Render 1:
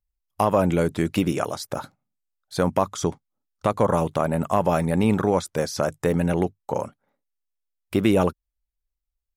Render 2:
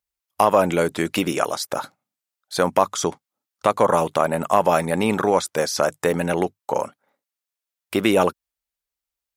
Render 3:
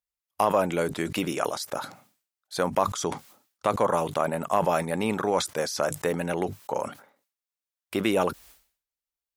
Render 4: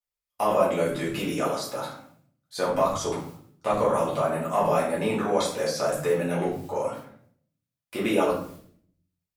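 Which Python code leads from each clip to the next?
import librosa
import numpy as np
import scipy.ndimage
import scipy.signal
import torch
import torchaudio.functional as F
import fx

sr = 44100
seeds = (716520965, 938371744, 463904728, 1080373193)

y1 = fx.highpass(x, sr, hz=550.0, slope=6)
y1 = F.gain(torch.from_numpy(y1), 6.5).numpy()
y2 = fx.sustainer(y1, sr, db_per_s=120.0)
y2 = F.gain(torch.from_numpy(y2), -6.5).numpy()
y3 = fx.room_shoebox(y2, sr, seeds[0], volume_m3=77.0, walls='mixed', distance_m=1.9)
y3 = F.gain(torch.from_numpy(y3), -8.5).numpy()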